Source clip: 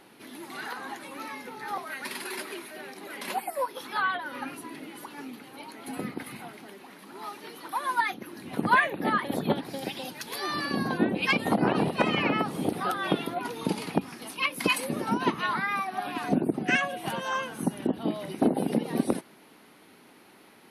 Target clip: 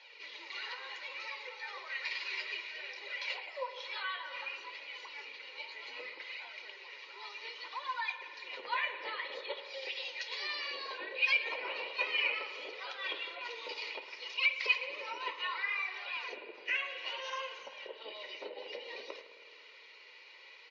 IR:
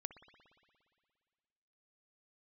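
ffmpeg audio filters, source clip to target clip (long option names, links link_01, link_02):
-filter_complex "[0:a]asettb=1/sr,asplit=3[link_01][link_02][link_03];[link_01]atrim=end=14.754[link_04];[link_02]atrim=start=14.75:end=17.05,asetpts=PTS-STARTPTS,afade=type=in:duration=0.004:curve=qsin,afade=type=out:start_time=2.296:duration=0.004:curve=qsin,acrossover=split=3000[link_05][link_06];[link_06]acompressor=threshold=-46dB:ratio=4:attack=1:release=60[link_07];[link_05][link_07]amix=inputs=2:normalize=0[link_08];[link_03]atrim=start=17.046[link_09];[link_04][link_08]acrossfade=duration=0.004:curve1=hsin:curve2=qsin[link_10];[link_10][link_09]acrossfade=duration=0.004:curve1=qsin:curve2=hsin,aecho=1:1:2.1:0.52,acompressor=threshold=-42dB:ratio=1.5,flanger=delay=6.6:depth=8.8:regen=-56:speed=0.13:shape=sinusoidal,aexciter=amount=10.4:drive=3.7:freq=2200,asoftclip=type=tanh:threshold=-13.5dB,flanger=delay=1.2:depth=8.9:regen=-15:speed=0.62:shape=sinusoidal,highpass=frequency=470:width=0.5412,highpass=frequency=470:width=1.3066,equalizer=frequency=510:width_type=q:width=4:gain=5,equalizer=frequency=760:width_type=q:width=4:gain=-5,equalizer=frequency=1100:width_type=q:width=4:gain=6,equalizer=frequency=2100:width_type=q:width=4:gain=4,equalizer=frequency=3400:width_type=q:width=4:gain=-9,lowpass=frequency=3800:width=0.5412,lowpass=frequency=3800:width=1.3066,asplit=2[link_11][link_12];[link_12]adelay=291.5,volume=-28dB,highshelf=frequency=4000:gain=-6.56[link_13];[link_11][link_13]amix=inputs=2:normalize=0[link_14];[1:a]atrim=start_sample=2205,asetrate=48510,aresample=44100[link_15];[link_14][link_15]afir=irnorm=-1:irlink=0,volume=4dB" -ar 16000 -c:a libmp3lame -b:a 48k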